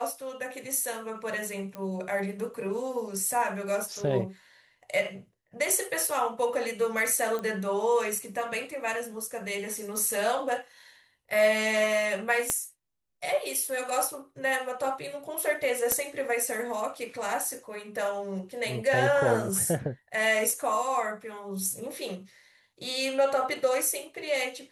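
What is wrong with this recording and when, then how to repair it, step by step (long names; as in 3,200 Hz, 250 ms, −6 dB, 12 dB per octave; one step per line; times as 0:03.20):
0:01.75: click −24 dBFS
0:07.39: click −21 dBFS
0:12.50: click −11 dBFS
0:15.92: click −14 dBFS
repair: click removal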